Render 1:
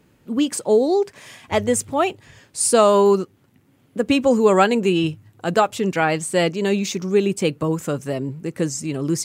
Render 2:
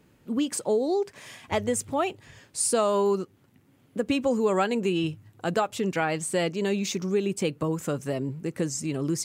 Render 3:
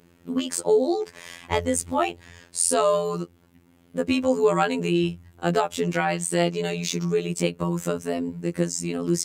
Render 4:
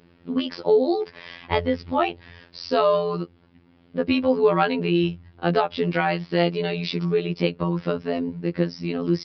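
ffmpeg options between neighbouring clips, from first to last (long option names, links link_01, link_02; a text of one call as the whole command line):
ffmpeg -i in.wav -af "acompressor=threshold=-22dB:ratio=2,volume=-3dB" out.wav
ffmpeg -i in.wav -af "afftfilt=real='hypot(re,im)*cos(PI*b)':imag='0':win_size=2048:overlap=0.75,volume=6.5dB" out.wav
ffmpeg -i in.wav -af "aresample=11025,aresample=44100,volume=1.5dB" out.wav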